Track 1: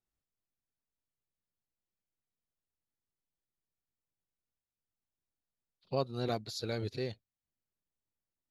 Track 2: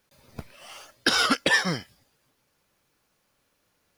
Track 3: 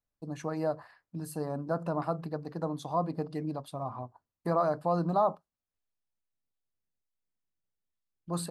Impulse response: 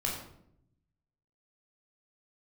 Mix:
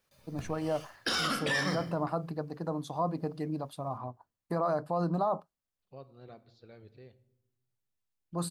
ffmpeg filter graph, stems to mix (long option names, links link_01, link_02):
-filter_complex "[0:a]lowpass=2700,volume=-17.5dB,asplit=2[link_01][link_02];[link_02]volume=-16dB[link_03];[1:a]volume=-9.5dB,asplit=2[link_04][link_05];[link_05]volume=-6.5dB[link_06];[2:a]adelay=50,volume=0dB[link_07];[3:a]atrim=start_sample=2205[link_08];[link_03][link_06]amix=inputs=2:normalize=0[link_09];[link_09][link_08]afir=irnorm=-1:irlink=0[link_10];[link_01][link_04][link_07][link_10]amix=inputs=4:normalize=0,alimiter=limit=-21dB:level=0:latency=1:release=18"